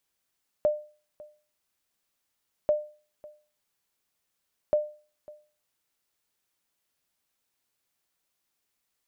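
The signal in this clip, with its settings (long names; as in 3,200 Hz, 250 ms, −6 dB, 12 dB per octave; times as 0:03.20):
ping with an echo 601 Hz, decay 0.38 s, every 2.04 s, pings 3, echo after 0.55 s, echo −22.5 dB −16 dBFS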